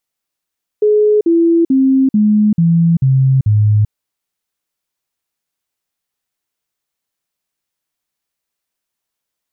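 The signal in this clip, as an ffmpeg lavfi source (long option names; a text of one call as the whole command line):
ffmpeg -f lavfi -i "aevalsrc='0.422*clip(min(mod(t,0.44),0.39-mod(t,0.44))/0.005,0,1)*sin(2*PI*422*pow(2,-floor(t/0.44)/3)*mod(t,0.44))':duration=3.08:sample_rate=44100" out.wav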